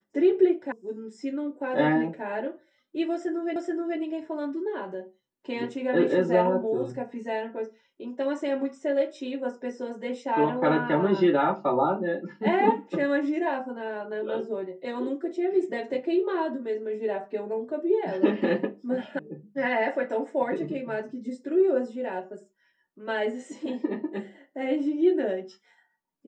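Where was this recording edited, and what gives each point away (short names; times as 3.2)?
0.72 sound cut off
3.56 repeat of the last 0.43 s
19.19 sound cut off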